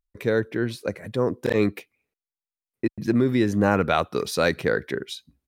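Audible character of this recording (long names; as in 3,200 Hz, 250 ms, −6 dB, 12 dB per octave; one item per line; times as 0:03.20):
background noise floor −95 dBFS
spectral slope −5.0 dB per octave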